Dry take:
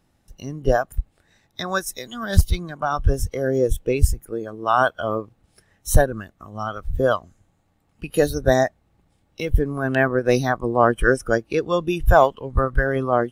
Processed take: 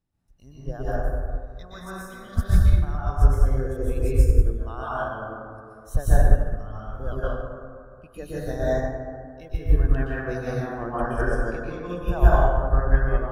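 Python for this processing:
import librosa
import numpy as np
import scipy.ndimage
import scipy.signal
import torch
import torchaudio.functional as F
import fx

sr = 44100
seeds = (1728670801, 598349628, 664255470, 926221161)

y = fx.low_shelf(x, sr, hz=180.0, db=9.5)
y = fx.rev_plate(y, sr, seeds[0], rt60_s=2.2, hf_ratio=0.35, predelay_ms=110, drr_db=-9.0)
y = fx.upward_expand(y, sr, threshold_db=-10.0, expansion=1.5)
y = y * librosa.db_to_amplitude(-14.0)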